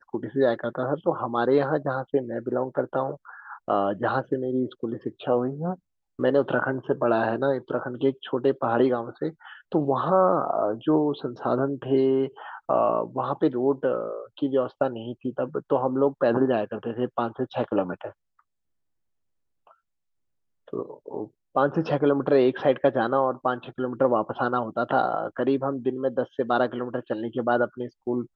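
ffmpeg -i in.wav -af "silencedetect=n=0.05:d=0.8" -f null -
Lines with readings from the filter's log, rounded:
silence_start: 18.07
silence_end: 20.73 | silence_duration: 2.66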